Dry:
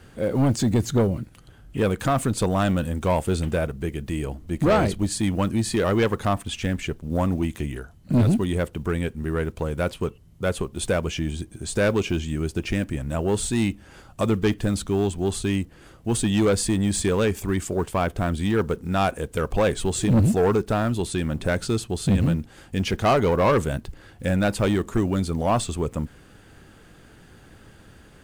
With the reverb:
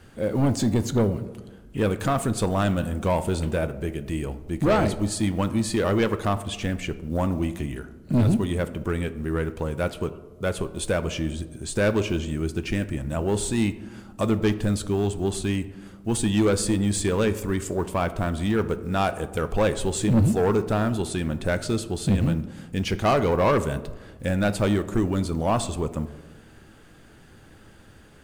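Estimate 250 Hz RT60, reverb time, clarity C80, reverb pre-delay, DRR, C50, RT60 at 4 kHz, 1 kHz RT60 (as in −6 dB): 1.7 s, 1.3 s, 16.5 dB, 3 ms, 11.0 dB, 14.5 dB, 0.55 s, 1.2 s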